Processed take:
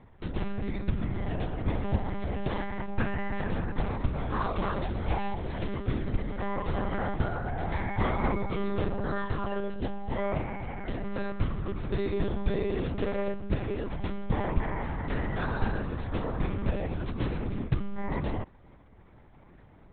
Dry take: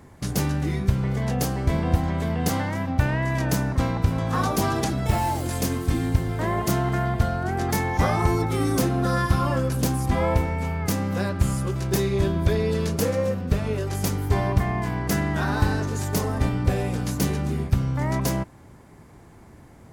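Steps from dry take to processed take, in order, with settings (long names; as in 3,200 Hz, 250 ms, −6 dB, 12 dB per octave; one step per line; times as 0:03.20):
0:08.95–0:11.04: notch comb filter 1,200 Hz
one-pitch LPC vocoder at 8 kHz 200 Hz
level −6 dB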